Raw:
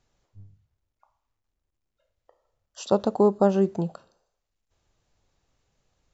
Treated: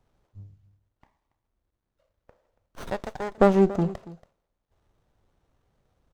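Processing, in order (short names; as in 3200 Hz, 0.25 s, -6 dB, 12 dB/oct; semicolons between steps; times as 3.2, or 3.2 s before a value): 2.87–3.38 HPF 1200 Hz 12 dB/oct; echo 0.281 s -18 dB; running maximum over 17 samples; gain +3.5 dB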